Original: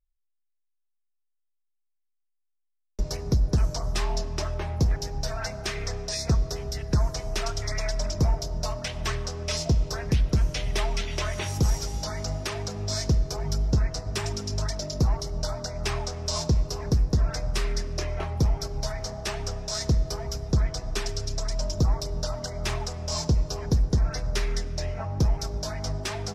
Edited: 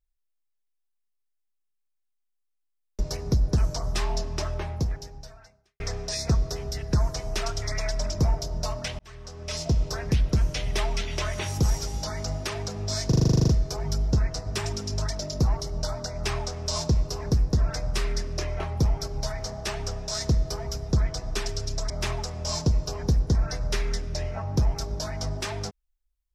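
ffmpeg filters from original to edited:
-filter_complex "[0:a]asplit=14[a][b][c][d][e][f][g][h][i][j][k][l][m][n];[a]atrim=end=5.8,asetpts=PTS-STARTPTS,afade=t=out:st=4.58:d=1.22:c=qua[o];[b]atrim=start=5.8:end=8.99,asetpts=PTS-STARTPTS,afade=t=in:d=0.004:c=hsin,afade=t=out:st=3.186:d=0.004:c=hsin[p];[c]atrim=start=8.99:end=13.122,asetpts=PTS-STARTPTS,afade=t=in:d=0.82[q];[d]atrim=start=13.078:end=13.122[r];[e]atrim=start=13.078:end=13.122[s];[f]atrim=start=13.078:end=13.122[t];[g]atrim=start=13.078:end=13.122[u];[h]atrim=start=13.078:end=13.122[v];[i]atrim=start=13.078:end=13.122[w];[j]atrim=start=13.078:end=13.122[x];[k]atrim=start=13.078:end=13.122[y];[l]atrim=start=13.078:end=13.122[z];[m]atrim=start=13.078:end=21.502[aa];[n]atrim=start=22.528[ab];[o][p][q]concat=n=3:v=0:a=1[ac];[ac][r]acrossfade=d=0.004:c1=hsin:c2=hsin[ad];[ad][s]acrossfade=d=0.004:c1=hsin:c2=hsin[ae];[ae][t]acrossfade=d=0.004:c1=hsin:c2=hsin[af];[af][u]acrossfade=d=0.004:c1=hsin:c2=hsin[ag];[ag][v]acrossfade=d=0.004:c1=hsin:c2=hsin[ah];[ah][w]acrossfade=d=0.004:c1=hsin:c2=hsin[ai];[ai][x]acrossfade=d=0.004:c1=hsin:c2=hsin[aj];[aj][y]acrossfade=d=0.004:c1=hsin:c2=hsin[ak];[ak][z]acrossfade=d=0.004:c1=hsin:c2=hsin[al];[al][aa]acrossfade=d=0.004:c1=hsin:c2=hsin[am];[am][ab]acrossfade=d=0.004:c1=hsin:c2=hsin"

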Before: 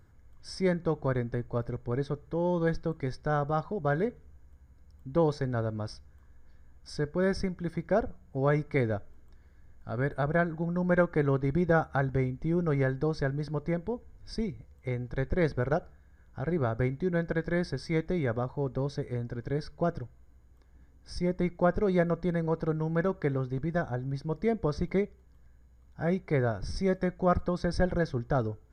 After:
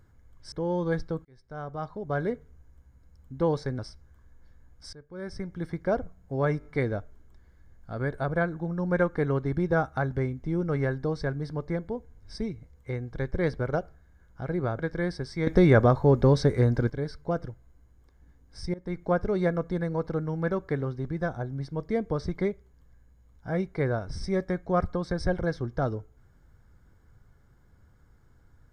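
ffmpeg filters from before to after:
-filter_complex "[0:a]asplit=12[a][b][c][d][e][f][g][h][i][j][k][l];[a]atrim=end=0.522[m];[b]atrim=start=2.268:end=3,asetpts=PTS-STARTPTS,afade=t=out:st=0.728:d=0.004:c=hsin[n];[c]atrim=start=3:end=5.542,asetpts=PTS-STARTPTS,afade=t=in:d=1.03[o];[d]atrim=start=5.828:end=6.97,asetpts=PTS-STARTPTS,afade=t=out:st=1.138:d=0.004:c=hsin:silence=0.112202[p];[e]atrim=start=6.97:end=8.652,asetpts=PTS-STARTPTS,afade=t=in:d=0.64:c=qua:silence=0.112202[q];[f]atrim=start=8.628:end=8.652[r];[g]atrim=start=8.628:end=8.652[s];[h]atrim=start=8.628:end=16.772[t];[i]atrim=start=17.318:end=18.002[u];[j]atrim=start=17.998:end=19.432,asetpts=PTS-STARTPTS,volume=11.5dB[v];[k]atrim=start=19.428:end=21.27,asetpts=PTS-STARTPTS,afade=t=out:st=1.838:d=0.004:c=hsin:silence=0.0891251[w];[l]atrim=start=21.27,asetpts=PTS-STARTPTS,afade=t=in:d=0.29:silence=0.0891251[x];[n][o]concat=n=2:v=0:a=1[y];[m][y]acrossfade=d=0.004:c1=hsin:c2=hsin[z];[p][q]concat=n=2:v=0:a=1[aa];[z][aa]acrossfade=d=0.004:c1=hsin:c2=hsin[ab];[ab][r]acrossfade=d=0.004:c1=hsin:c2=hsin[ac];[ac][s]acrossfade=d=0.004:c1=hsin:c2=hsin[ad];[ad][t]acrossfade=d=0.004:c1=hsin:c2=hsin[ae];[ae][u]acrossfade=d=0.004:c1=hsin:c2=hsin[af];[af][v]acrossfade=d=0.004:c1=hsin:c2=hsin[ag];[w][x]concat=n=2:v=0:a=1[ah];[ag][ah]acrossfade=d=0.004:c1=hsin:c2=hsin"

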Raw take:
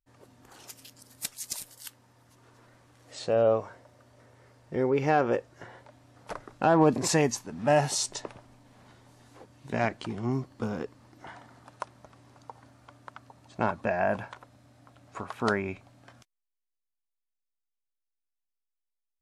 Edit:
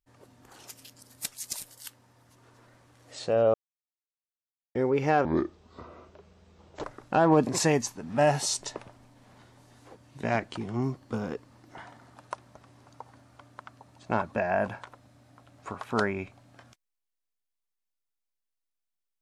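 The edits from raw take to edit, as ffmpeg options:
-filter_complex "[0:a]asplit=5[a][b][c][d][e];[a]atrim=end=3.54,asetpts=PTS-STARTPTS,afade=t=out:st=3.536:d=0.004:c=hsin[f];[b]atrim=start=3.54:end=4.75,asetpts=PTS-STARTPTS,volume=0[g];[c]atrim=start=4.75:end=5.254,asetpts=PTS-STARTPTS,afade=t=in:d=0.004:c=hsin[h];[d]atrim=start=5.25:end=6.33,asetpts=PTS-STARTPTS,asetrate=29988,aresample=44100,atrim=end_sample=70041,asetpts=PTS-STARTPTS[i];[e]atrim=start=6.326[j];[f][g][h]concat=n=3:v=0:a=1[k];[k][i]acrossfade=d=0.004:c1=hsin:c2=hsin[l];[l][j]acrossfade=d=0.004:c1=hsin:c2=hsin"

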